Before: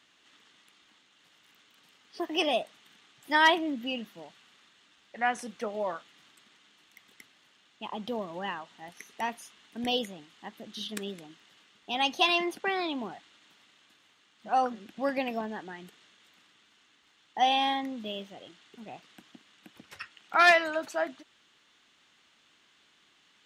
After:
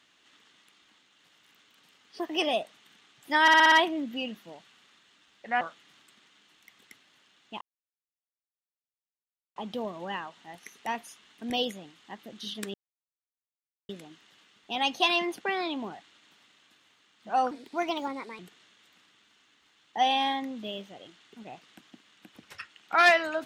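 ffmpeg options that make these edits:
ffmpeg -i in.wav -filter_complex "[0:a]asplit=11[link_01][link_02][link_03][link_04][link_05][link_06][link_07][link_08][link_09][link_10][link_11];[link_01]atrim=end=3.482[link_12];[link_02]atrim=start=3.418:end=3.482[link_13];[link_03]atrim=start=3.418:end=3.482[link_14];[link_04]atrim=start=3.418:end=3.482[link_15];[link_05]atrim=start=3.418:end=3.482[link_16];[link_06]atrim=start=3.418:end=5.312[link_17];[link_07]atrim=start=5.898:end=7.9,asetpts=PTS-STARTPTS,afade=type=out:start_time=1.998:duration=0.004:curve=hsin,apad=pad_dur=1.95[link_18];[link_08]atrim=start=7.9:end=11.08,asetpts=PTS-STARTPTS,afade=type=in:duration=0.004:curve=hsin,afade=type=out:start_time=3.176:duration=0.004:curve=hsin,apad=pad_dur=1.15[link_19];[link_09]atrim=start=11.08:end=14.704,asetpts=PTS-STARTPTS,afade=type=in:duration=0.004:curve=hsin[link_20];[link_10]atrim=start=14.7:end=15.8,asetpts=PTS-STARTPTS,asetrate=55125,aresample=44100[link_21];[link_11]atrim=start=15.796[link_22];[link_12][link_13]acrossfade=duration=0.004:curve1=hsin:curve2=hsin[link_23];[link_23][link_14]acrossfade=duration=0.004:curve1=hsin:curve2=hsin[link_24];[link_24][link_15]acrossfade=duration=0.004:curve1=hsin:curve2=hsin[link_25];[link_25][link_16]acrossfade=duration=0.004:curve1=hsin:curve2=hsin[link_26];[link_26][link_17]acrossfade=duration=0.004:curve1=hsin:curve2=hsin[link_27];[link_18][link_19][link_20]concat=n=3:v=0:a=1[link_28];[link_27][link_28]acrossfade=duration=0.004:curve1=hsin:curve2=hsin[link_29];[link_29][link_21]acrossfade=duration=0.004:curve1=hsin:curve2=hsin[link_30];[link_30][link_22]acrossfade=duration=0.004:curve1=hsin:curve2=hsin" out.wav

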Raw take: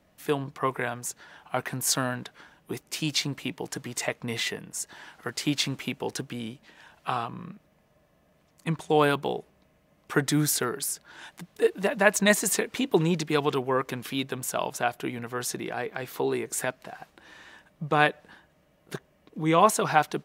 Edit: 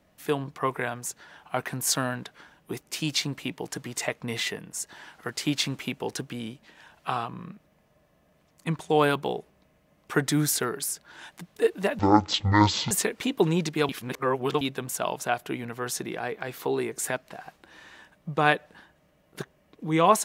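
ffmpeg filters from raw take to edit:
ffmpeg -i in.wav -filter_complex "[0:a]asplit=5[link_01][link_02][link_03][link_04][link_05];[link_01]atrim=end=11.994[link_06];[link_02]atrim=start=11.99:end=12.45,asetpts=PTS-STARTPTS,asetrate=22050,aresample=44100[link_07];[link_03]atrim=start=12.446:end=13.432[link_08];[link_04]atrim=start=13.428:end=14.152,asetpts=PTS-STARTPTS,areverse[link_09];[link_05]atrim=start=14.148[link_10];[link_06][link_07]acrossfade=duration=0.004:curve1=hsin:curve2=hsin[link_11];[link_11][link_08]acrossfade=duration=0.004:curve1=hsin:curve2=hsin[link_12];[link_12][link_09]acrossfade=duration=0.004:curve1=hsin:curve2=hsin[link_13];[link_13][link_10]acrossfade=duration=0.004:curve1=hsin:curve2=hsin" out.wav

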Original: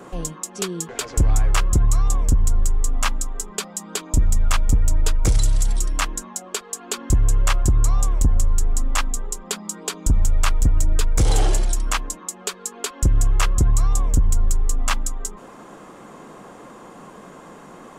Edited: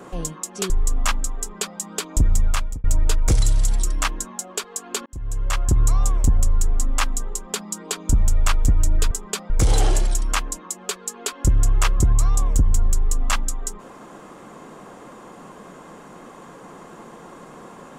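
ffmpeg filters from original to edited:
ffmpeg -i in.wav -filter_complex "[0:a]asplit=6[link_01][link_02][link_03][link_04][link_05][link_06];[link_01]atrim=end=0.702[link_07];[link_02]atrim=start=2.668:end=4.81,asetpts=PTS-STARTPTS,afade=type=out:start_time=1.742:duration=0.4[link_08];[link_03]atrim=start=4.81:end=7.03,asetpts=PTS-STARTPTS,afade=type=in:duration=0.004:curve=hsin,afade=type=out:start_time=2.216:duration=0.004:curve=hsin[link_09];[link_04]atrim=start=7.03:end=11.082,asetpts=PTS-STARTPTS,afade=type=in:duration=0.73[link_10];[link_05]atrim=start=3.358:end=3.752[link_11];[link_06]atrim=start=11.078[link_12];[link_08][link_09][link_10]concat=n=3:v=0:a=1[link_13];[link_07][link_13]acrossfade=duration=0.004:curve1=hsin:curve2=hsin[link_14];[link_14][link_11]acrossfade=duration=0.004:curve1=hsin:curve2=hsin[link_15];[link_15][link_12]acrossfade=duration=0.004:curve1=hsin:curve2=hsin" out.wav

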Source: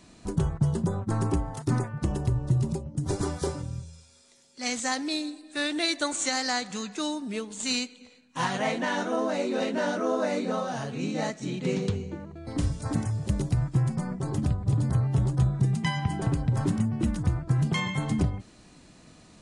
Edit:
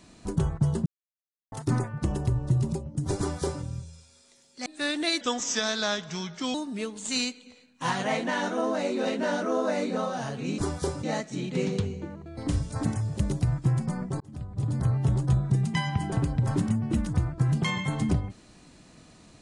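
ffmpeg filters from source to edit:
ffmpeg -i in.wav -filter_complex "[0:a]asplit=9[link_01][link_02][link_03][link_04][link_05][link_06][link_07][link_08][link_09];[link_01]atrim=end=0.86,asetpts=PTS-STARTPTS,afade=type=out:start_time=0.856:duration=0.004:curve=hsin[link_10];[link_02]atrim=start=0.86:end=1.52,asetpts=PTS-STARTPTS,volume=0[link_11];[link_03]atrim=start=1.52:end=4.662,asetpts=PTS-STARTPTS,afade=type=in:duration=0.004:curve=hsin[link_12];[link_04]atrim=start=5.418:end=5.974[link_13];[link_05]atrim=start=5.97:end=7.09,asetpts=PTS-STARTPTS,asetrate=37044,aresample=44100[link_14];[link_06]atrim=start=7.086:end=11.132[link_15];[link_07]atrim=start=3.178:end=3.632[link_16];[link_08]atrim=start=11.128:end=14.3,asetpts=PTS-STARTPTS,afade=type=out:start_time=3.168:duration=0.004:curve=hsin[link_17];[link_09]atrim=start=14.3,asetpts=PTS-STARTPTS,afade=type=in:duration=0.7[link_18];[link_10][link_11][link_12]concat=n=3:v=0:a=1[link_19];[link_19][link_13]acrossfade=duration=0.004:curve1=hsin:curve2=hsin[link_20];[link_20][link_14]acrossfade=duration=0.004:curve1=hsin:curve2=hsin[link_21];[link_21][link_15]acrossfade=duration=0.004:curve1=hsin:curve2=hsin[link_22];[link_22][link_16]acrossfade=duration=0.004:curve1=hsin:curve2=hsin[link_23];[link_17][link_18]concat=n=2:v=0:a=1[link_24];[link_23][link_24]acrossfade=duration=0.004:curve1=hsin:curve2=hsin" out.wav

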